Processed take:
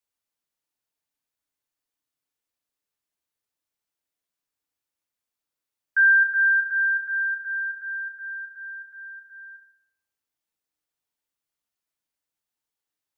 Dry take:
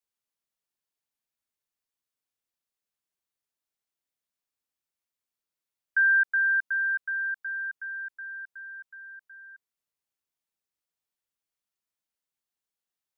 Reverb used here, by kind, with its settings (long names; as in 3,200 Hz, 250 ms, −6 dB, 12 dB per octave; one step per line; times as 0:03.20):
feedback delay network reverb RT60 0.76 s, low-frequency decay 1×, high-frequency decay 0.3×, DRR 6 dB
level +1.5 dB